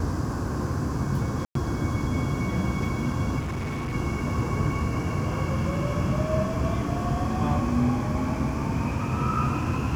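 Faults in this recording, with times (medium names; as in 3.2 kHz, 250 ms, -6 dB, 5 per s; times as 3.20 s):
1.45–1.55 s: dropout 103 ms
3.39–3.94 s: clipped -27 dBFS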